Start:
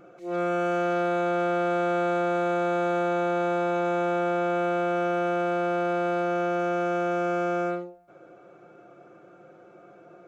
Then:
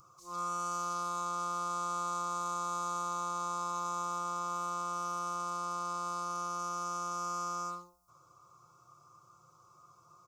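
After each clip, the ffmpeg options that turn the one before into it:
-af "firequalizer=gain_entry='entry(120,0);entry(210,-24);entry(720,-22);entry(1100,11);entry(1600,-28);entry(5100,11)':delay=0.05:min_phase=1"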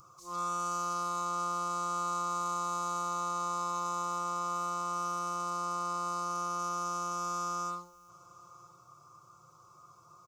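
-filter_complex "[0:a]asplit=2[a][b];[b]asoftclip=type=tanh:threshold=-38dB,volume=-7dB[c];[a][c]amix=inputs=2:normalize=0,aecho=1:1:1007:0.0668"

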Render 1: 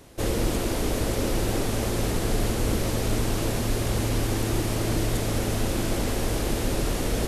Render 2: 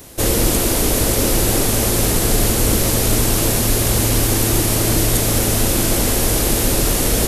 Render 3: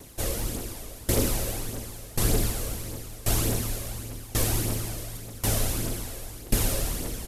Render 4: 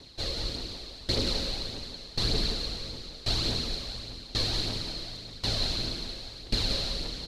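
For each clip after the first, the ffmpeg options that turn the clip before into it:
-af "aemphasis=mode=production:type=50kf,volume=7.5dB"
-af "aecho=1:1:198.3|288.6:0.251|0.251,aphaser=in_gain=1:out_gain=1:delay=1.9:decay=0.43:speed=1.7:type=triangular,aeval=exprs='val(0)*pow(10,-22*if(lt(mod(0.92*n/s,1),2*abs(0.92)/1000),1-mod(0.92*n/s,1)/(2*abs(0.92)/1000),(mod(0.92*n/s,1)-2*abs(0.92)/1000)/(1-2*abs(0.92)/1000))/20)':c=same,volume=-8dB"
-af "lowpass=f=4.2k:t=q:w=11,aecho=1:1:178:0.473,volume=-6dB"

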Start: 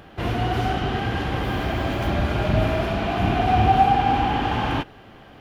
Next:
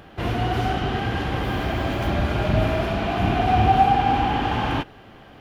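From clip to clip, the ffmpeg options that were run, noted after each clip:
-af anull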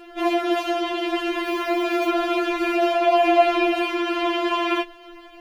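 -af "afftfilt=real='re*4*eq(mod(b,16),0)':imag='im*4*eq(mod(b,16),0)':win_size=2048:overlap=0.75,volume=5.5dB"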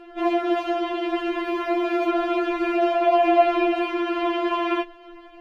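-af "lowpass=f=1.8k:p=1"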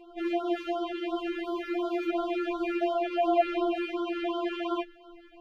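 -af "afftfilt=real='re*(1-between(b*sr/1024,750*pow(2200/750,0.5+0.5*sin(2*PI*2.8*pts/sr))/1.41,750*pow(2200/750,0.5+0.5*sin(2*PI*2.8*pts/sr))*1.41))':imag='im*(1-between(b*sr/1024,750*pow(2200/750,0.5+0.5*sin(2*PI*2.8*pts/sr))/1.41,750*pow(2200/750,0.5+0.5*sin(2*PI*2.8*pts/sr))*1.41))':win_size=1024:overlap=0.75,volume=-6.5dB"

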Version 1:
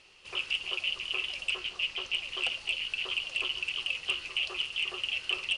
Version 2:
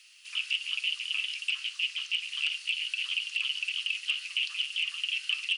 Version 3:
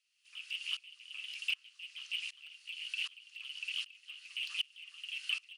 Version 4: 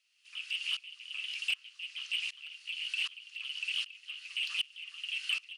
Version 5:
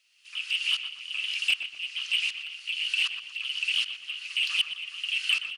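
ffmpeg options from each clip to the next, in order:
-filter_complex "[0:a]aemphasis=mode=production:type=75fm,acrossover=split=5400[a][b];[b]acompressor=threshold=-48dB:ratio=4:attack=1:release=60[c];[a][c]amix=inputs=2:normalize=0,highpass=f=1.5k:w=0.5412,highpass=f=1.5k:w=1.3066,volume=-2dB"
-filter_complex "[0:a]acrossover=split=3200[a][b];[b]volume=35dB,asoftclip=hard,volume=-35dB[c];[a][c]amix=inputs=2:normalize=0,aeval=exprs='val(0)*pow(10,-25*if(lt(mod(-1.3*n/s,1),2*abs(-1.3)/1000),1-mod(-1.3*n/s,1)/(2*abs(-1.3)/1000),(mod(-1.3*n/s,1)-2*abs(-1.3)/1000)/(1-2*abs(-1.3)/1000))/20)':c=same,volume=-1.5dB"
-filter_complex "[0:a]asplit=2[a][b];[b]highpass=f=720:p=1,volume=11dB,asoftclip=type=tanh:threshold=-22dB[c];[a][c]amix=inputs=2:normalize=0,lowpass=f=5.5k:p=1,volume=-6dB"
-filter_complex "[0:a]asplit=2[a][b];[b]adelay=121,lowpass=f=1.9k:p=1,volume=-6dB,asplit=2[c][d];[d]adelay=121,lowpass=f=1.9k:p=1,volume=0.52,asplit=2[e][f];[f]adelay=121,lowpass=f=1.9k:p=1,volume=0.52,asplit=2[g][h];[h]adelay=121,lowpass=f=1.9k:p=1,volume=0.52,asplit=2[i][j];[j]adelay=121,lowpass=f=1.9k:p=1,volume=0.52,asplit=2[k][l];[l]adelay=121,lowpass=f=1.9k:p=1,volume=0.52[m];[a][c][e][g][i][k][m]amix=inputs=7:normalize=0,volume=7.5dB"

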